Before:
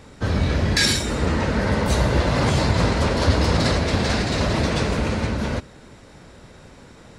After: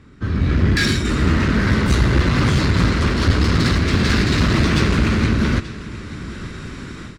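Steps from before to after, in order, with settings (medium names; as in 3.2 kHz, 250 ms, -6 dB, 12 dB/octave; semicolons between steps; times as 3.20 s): low-pass 1.5 kHz 6 dB/octave, from 1.05 s 4 kHz; level rider gain up to 15 dB; high-order bell 660 Hz -13 dB 1.2 oct; delay 883 ms -17.5 dB; one-sided clip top -15 dBFS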